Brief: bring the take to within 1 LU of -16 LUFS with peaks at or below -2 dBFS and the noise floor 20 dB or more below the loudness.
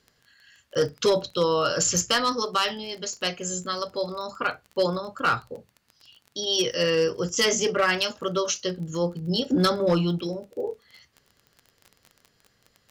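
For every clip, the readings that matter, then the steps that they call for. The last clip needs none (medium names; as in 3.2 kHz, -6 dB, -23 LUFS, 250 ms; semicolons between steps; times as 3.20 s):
tick rate 25 per s; loudness -25.0 LUFS; peak level -13.0 dBFS; loudness target -16.0 LUFS
-> de-click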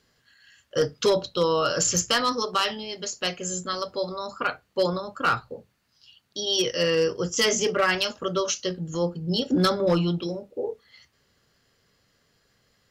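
tick rate 0.077 per s; loudness -25.0 LUFS; peak level -11.5 dBFS; loudness target -16.0 LUFS
-> trim +9 dB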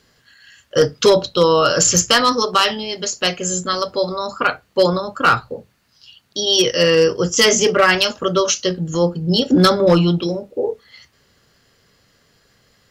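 loudness -16.0 LUFS; peak level -2.5 dBFS; noise floor -59 dBFS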